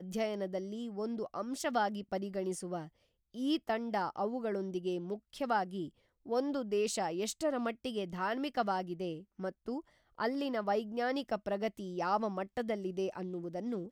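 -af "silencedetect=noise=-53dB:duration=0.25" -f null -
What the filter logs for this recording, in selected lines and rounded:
silence_start: 2.88
silence_end: 3.34 | silence_duration: 0.46
silence_start: 5.89
silence_end: 6.26 | silence_duration: 0.36
silence_start: 9.81
silence_end: 10.19 | silence_duration: 0.38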